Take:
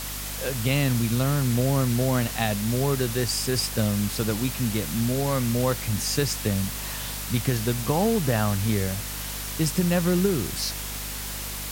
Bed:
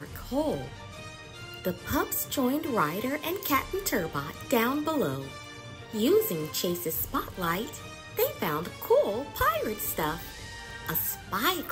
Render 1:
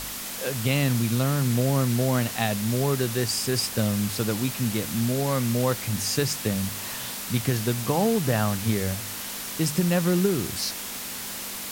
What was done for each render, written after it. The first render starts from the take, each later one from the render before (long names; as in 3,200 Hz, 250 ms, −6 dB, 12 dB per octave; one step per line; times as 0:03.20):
hum removal 50 Hz, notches 3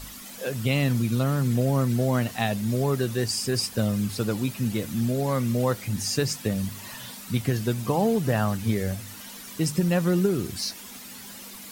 broadband denoise 11 dB, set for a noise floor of −35 dBFS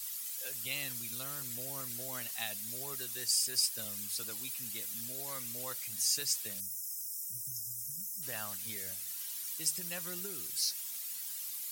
0:06.60–0:08.22: time-frequency box erased 210–5,000 Hz
first-order pre-emphasis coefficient 0.97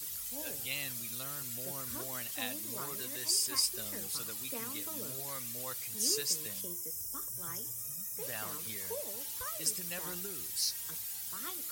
mix in bed −20 dB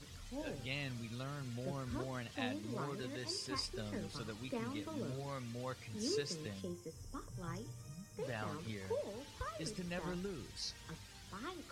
low-pass filter 4,700 Hz 12 dB per octave
spectral tilt −2.5 dB per octave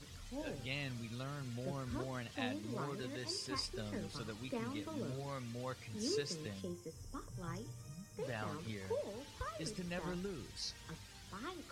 0:02.56–0:03.56: floating-point word with a short mantissa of 6 bits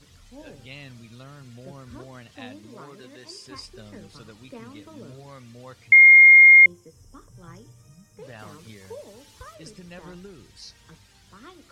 0:02.68–0:03.46: parametric band 74 Hz −14 dB 1.3 octaves
0:05.92–0:06.66: beep over 2,130 Hz −7 dBFS
0:08.39–0:09.55: high-shelf EQ 6,100 Hz +9 dB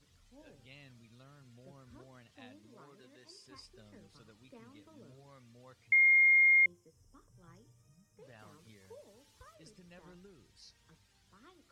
level −14 dB